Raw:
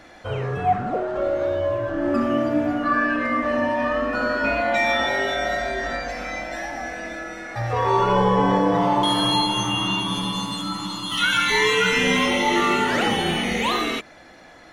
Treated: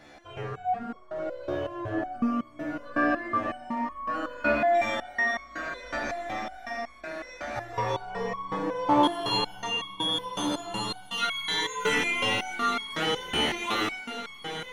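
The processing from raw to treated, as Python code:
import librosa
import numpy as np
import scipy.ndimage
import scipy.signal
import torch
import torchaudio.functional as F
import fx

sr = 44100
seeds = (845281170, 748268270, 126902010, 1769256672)

y = fx.echo_diffused(x, sr, ms=1379, feedback_pct=54, wet_db=-8)
y = fx.resonator_held(y, sr, hz=5.4, low_hz=73.0, high_hz=1100.0)
y = y * 10.0 ** (4.0 / 20.0)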